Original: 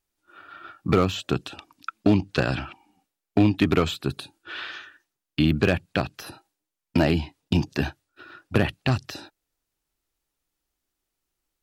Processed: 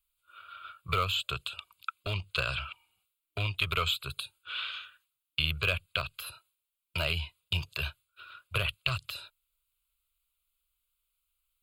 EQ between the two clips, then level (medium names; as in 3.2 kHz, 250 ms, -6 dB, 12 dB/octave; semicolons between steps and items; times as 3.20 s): amplifier tone stack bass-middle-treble 10-0-10; static phaser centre 1.2 kHz, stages 8; +5.5 dB